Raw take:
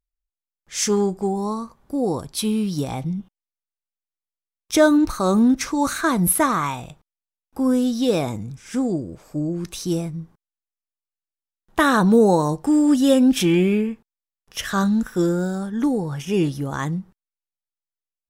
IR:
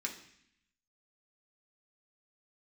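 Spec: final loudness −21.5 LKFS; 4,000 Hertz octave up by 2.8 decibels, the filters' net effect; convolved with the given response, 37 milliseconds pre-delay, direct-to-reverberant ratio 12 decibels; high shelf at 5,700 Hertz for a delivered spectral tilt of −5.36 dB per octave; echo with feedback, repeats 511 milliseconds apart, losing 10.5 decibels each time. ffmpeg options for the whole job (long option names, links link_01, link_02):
-filter_complex "[0:a]equalizer=frequency=4000:width_type=o:gain=6,highshelf=frequency=5700:gain=-6.5,aecho=1:1:511|1022|1533:0.299|0.0896|0.0269,asplit=2[link_01][link_02];[1:a]atrim=start_sample=2205,adelay=37[link_03];[link_02][link_03]afir=irnorm=-1:irlink=0,volume=-13dB[link_04];[link_01][link_04]amix=inputs=2:normalize=0,volume=-1dB"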